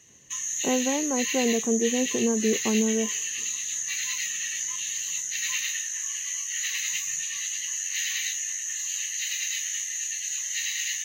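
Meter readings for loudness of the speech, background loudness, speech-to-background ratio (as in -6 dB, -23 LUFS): -27.0 LUFS, -27.5 LUFS, 0.5 dB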